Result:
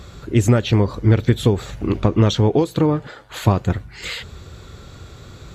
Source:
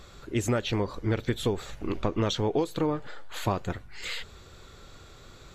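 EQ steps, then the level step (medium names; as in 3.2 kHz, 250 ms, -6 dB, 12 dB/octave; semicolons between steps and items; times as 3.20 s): high-pass 67 Hz; bass shelf 210 Hz +12 dB; +6.5 dB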